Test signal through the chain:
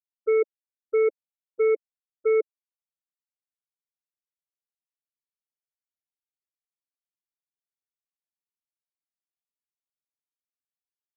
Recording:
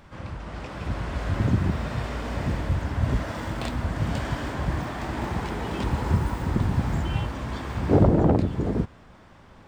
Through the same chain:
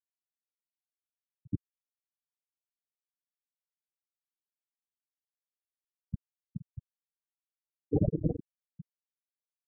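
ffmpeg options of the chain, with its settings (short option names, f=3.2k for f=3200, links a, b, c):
-af "aecho=1:1:6.6:0.37,aeval=exprs='0.501*(cos(1*acos(clip(val(0)/0.501,-1,1)))-cos(1*PI/2))+0.0316*(cos(3*acos(clip(val(0)/0.501,-1,1)))-cos(3*PI/2))+0.0794*(cos(7*acos(clip(val(0)/0.501,-1,1)))-cos(7*PI/2))':c=same,afftfilt=real='re*gte(hypot(re,im),0.447)':imag='im*gte(hypot(re,im),0.447)':win_size=1024:overlap=0.75,volume=-8dB"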